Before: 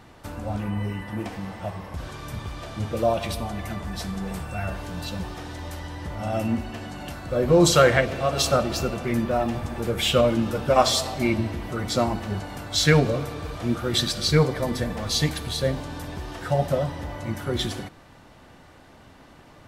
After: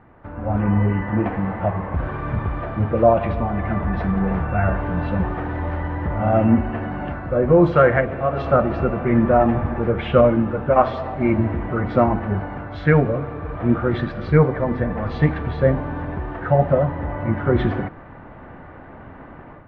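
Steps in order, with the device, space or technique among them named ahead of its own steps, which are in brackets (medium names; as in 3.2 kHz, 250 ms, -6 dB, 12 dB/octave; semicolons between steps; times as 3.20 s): action camera in a waterproof case (low-pass 1.9 kHz 24 dB/octave; level rider gain up to 11.5 dB; trim -1 dB; AAC 64 kbps 24 kHz)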